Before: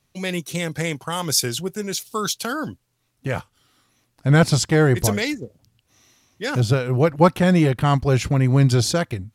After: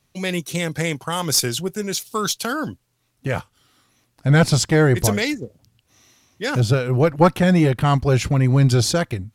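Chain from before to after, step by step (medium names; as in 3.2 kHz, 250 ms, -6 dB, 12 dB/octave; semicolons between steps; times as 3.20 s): single-diode clipper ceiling -5 dBFS; trim +2 dB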